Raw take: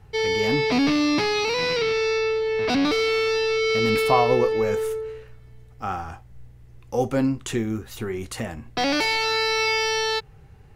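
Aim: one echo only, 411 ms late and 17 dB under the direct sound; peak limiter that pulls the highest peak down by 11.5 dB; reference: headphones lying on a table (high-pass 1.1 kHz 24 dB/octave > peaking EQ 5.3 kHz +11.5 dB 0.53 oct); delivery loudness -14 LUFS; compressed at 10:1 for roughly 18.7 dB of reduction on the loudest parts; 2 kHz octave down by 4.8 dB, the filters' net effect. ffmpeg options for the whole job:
-af "equalizer=f=2000:t=o:g=-6.5,acompressor=threshold=0.02:ratio=10,alimiter=level_in=2.99:limit=0.0631:level=0:latency=1,volume=0.335,highpass=f=1100:w=0.5412,highpass=f=1100:w=1.3066,equalizer=f=5300:t=o:w=0.53:g=11.5,aecho=1:1:411:0.141,volume=17.8"

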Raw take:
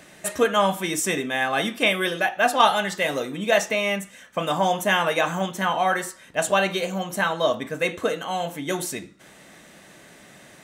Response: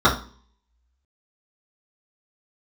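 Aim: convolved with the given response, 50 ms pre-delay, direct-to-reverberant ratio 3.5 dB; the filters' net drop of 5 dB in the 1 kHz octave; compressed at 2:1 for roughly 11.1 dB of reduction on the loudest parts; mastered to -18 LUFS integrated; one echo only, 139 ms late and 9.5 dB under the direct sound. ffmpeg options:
-filter_complex "[0:a]equalizer=f=1000:t=o:g=-7,acompressor=threshold=0.0141:ratio=2,aecho=1:1:139:0.335,asplit=2[s0][s1];[1:a]atrim=start_sample=2205,adelay=50[s2];[s1][s2]afir=irnorm=-1:irlink=0,volume=0.0501[s3];[s0][s3]amix=inputs=2:normalize=0,volume=5.01"

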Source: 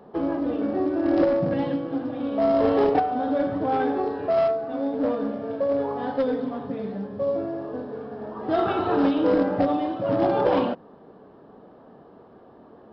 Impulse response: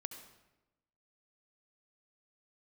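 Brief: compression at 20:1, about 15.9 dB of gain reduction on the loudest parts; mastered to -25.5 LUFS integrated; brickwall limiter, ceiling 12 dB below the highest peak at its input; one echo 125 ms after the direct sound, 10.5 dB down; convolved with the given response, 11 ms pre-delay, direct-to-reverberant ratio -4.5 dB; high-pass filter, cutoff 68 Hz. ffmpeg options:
-filter_complex "[0:a]highpass=68,acompressor=threshold=0.0251:ratio=20,alimiter=level_in=3.55:limit=0.0631:level=0:latency=1,volume=0.282,aecho=1:1:125:0.299,asplit=2[s0][s1];[1:a]atrim=start_sample=2205,adelay=11[s2];[s1][s2]afir=irnorm=-1:irlink=0,volume=2.24[s3];[s0][s3]amix=inputs=2:normalize=0,volume=3.55"

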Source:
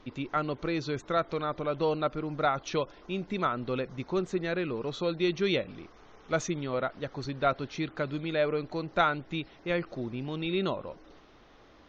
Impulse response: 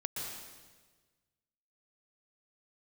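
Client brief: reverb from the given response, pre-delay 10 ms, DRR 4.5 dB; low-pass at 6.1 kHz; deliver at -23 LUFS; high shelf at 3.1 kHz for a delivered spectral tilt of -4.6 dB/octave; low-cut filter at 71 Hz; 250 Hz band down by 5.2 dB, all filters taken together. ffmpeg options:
-filter_complex "[0:a]highpass=71,lowpass=6100,equalizer=f=250:t=o:g=-8.5,highshelf=f=3100:g=4.5,asplit=2[s0][s1];[1:a]atrim=start_sample=2205,adelay=10[s2];[s1][s2]afir=irnorm=-1:irlink=0,volume=0.473[s3];[s0][s3]amix=inputs=2:normalize=0,volume=2.66"

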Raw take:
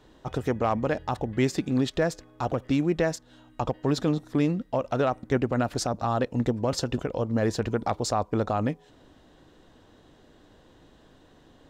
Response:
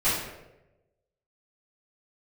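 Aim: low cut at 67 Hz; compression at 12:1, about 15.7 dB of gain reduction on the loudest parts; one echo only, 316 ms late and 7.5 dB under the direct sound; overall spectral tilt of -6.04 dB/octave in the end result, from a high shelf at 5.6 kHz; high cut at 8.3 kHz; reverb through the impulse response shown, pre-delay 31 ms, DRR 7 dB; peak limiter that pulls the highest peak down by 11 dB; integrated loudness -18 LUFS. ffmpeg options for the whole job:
-filter_complex "[0:a]highpass=67,lowpass=8300,highshelf=f=5600:g=-4.5,acompressor=threshold=0.0158:ratio=12,alimiter=level_in=2.66:limit=0.0631:level=0:latency=1,volume=0.376,aecho=1:1:316:0.422,asplit=2[s0][s1];[1:a]atrim=start_sample=2205,adelay=31[s2];[s1][s2]afir=irnorm=-1:irlink=0,volume=0.0944[s3];[s0][s3]amix=inputs=2:normalize=0,volume=16.8"

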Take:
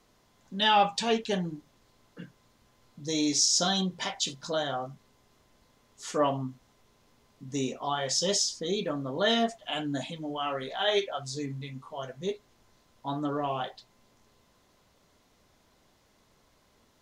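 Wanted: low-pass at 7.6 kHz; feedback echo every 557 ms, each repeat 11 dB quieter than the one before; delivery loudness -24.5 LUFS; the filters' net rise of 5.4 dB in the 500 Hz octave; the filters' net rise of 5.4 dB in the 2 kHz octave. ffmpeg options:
-af "lowpass=7600,equalizer=f=500:t=o:g=6.5,equalizer=f=2000:t=o:g=6.5,aecho=1:1:557|1114|1671:0.282|0.0789|0.0221,volume=1.26"

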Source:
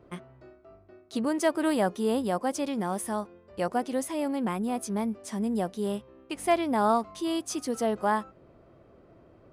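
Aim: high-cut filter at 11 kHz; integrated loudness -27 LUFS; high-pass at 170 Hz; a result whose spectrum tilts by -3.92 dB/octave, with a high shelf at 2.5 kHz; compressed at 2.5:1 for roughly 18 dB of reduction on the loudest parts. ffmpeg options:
-af "highpass=170,lowpass=11000,highshelf=f=2500:g=3.5,acompressor=threshold=0.00447:ratio=2.5,volume=7.08"

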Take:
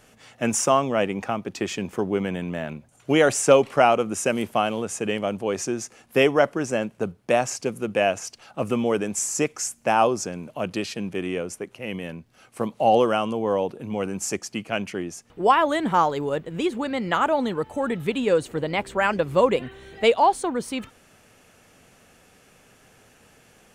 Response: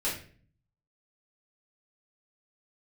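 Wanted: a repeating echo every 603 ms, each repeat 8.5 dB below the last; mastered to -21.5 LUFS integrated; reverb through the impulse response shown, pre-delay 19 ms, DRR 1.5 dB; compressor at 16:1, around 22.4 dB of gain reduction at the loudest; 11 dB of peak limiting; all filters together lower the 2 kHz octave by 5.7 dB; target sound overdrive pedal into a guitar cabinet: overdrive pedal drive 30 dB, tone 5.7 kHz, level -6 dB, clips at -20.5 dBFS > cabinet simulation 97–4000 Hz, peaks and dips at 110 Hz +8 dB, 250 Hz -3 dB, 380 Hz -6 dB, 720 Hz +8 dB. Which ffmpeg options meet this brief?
-filter_complex "[0:a]equalizer=f=2000:t=o:g=-8,acompressor=threshold=0.0224:ratio=16,alimiter=level_in=1.78:limit=0.0631:level=0:latency=1,volume=0.562,aecho=1:1:603|1206|1809|2412:0.376|0.143|0.0543|0.0206,asplit=2[s0][s1];[1:a]atrim=start_sample=2205,adelay=19[s2];[s1][s2]afir=irnorm=-1:irlink=0,volume=0.376[s3];[s0][s3]amix=inputs=2:normalize=0,asplit=2[s4][s5];[s5]highpass=f=720:p=1,volume=31.6,asoftclip=type=tanh:threshold=0.0944[s6];[s4][s6]amix=inputs=2:normalize=0,lowpass=f=5700:p=1,volume=0.501,highpass=97,equalizer=f=110:t=q:w=4:g=8,equalizer=f=250:t=q:w=4:g=-3,equalizer=f=380:t=q:w=4:g=-6,equalizer=f=720:t=q:w=4:g=8,lowpass=f=4000:w=0.5412,lowpass=f=4000:w=1.3066,volume=2.11"

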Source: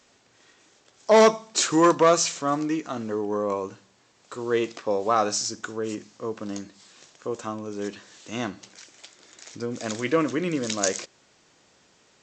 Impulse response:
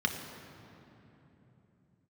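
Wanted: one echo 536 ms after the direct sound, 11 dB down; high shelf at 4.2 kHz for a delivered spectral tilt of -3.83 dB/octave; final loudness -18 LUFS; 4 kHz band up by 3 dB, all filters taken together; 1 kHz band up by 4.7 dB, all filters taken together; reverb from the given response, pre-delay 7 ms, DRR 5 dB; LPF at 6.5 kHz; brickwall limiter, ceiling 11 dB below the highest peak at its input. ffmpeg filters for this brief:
-filter_complex "[0:a]lowpass=6500,equalizer=f=1000:t=o:g=5.5,equalizer=f=4000:t=o:g=7,highshelf=f=4200:g=-4,alimiter=limit=0.188:level=0:latency=1,aecho=1:1:536:0.282,asplit=2[s0][s1];[1:a]atrim=start_sample=2205,adelay=7[s2];[s1][s2]afir=irnorm=-1:irlink=0,volume=0.224[s3];[s0][s3]amix=inputs=2:normalize=0,volume=2.66"

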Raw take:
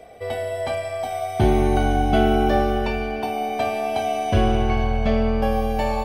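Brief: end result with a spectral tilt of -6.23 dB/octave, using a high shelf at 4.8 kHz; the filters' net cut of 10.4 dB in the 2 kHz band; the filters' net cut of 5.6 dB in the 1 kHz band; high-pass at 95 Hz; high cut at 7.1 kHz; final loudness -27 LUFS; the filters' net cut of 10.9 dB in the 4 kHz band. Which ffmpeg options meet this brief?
-af "highpass=95,lowpass=7100,equalizer=f=1000:t=o:g=-7,equalizer=f=2000:t=o:g=-8.5,equalizer=f=4000:t=o:g=-8.5,highshelf=f=4800:g=-5,volume=0.794"

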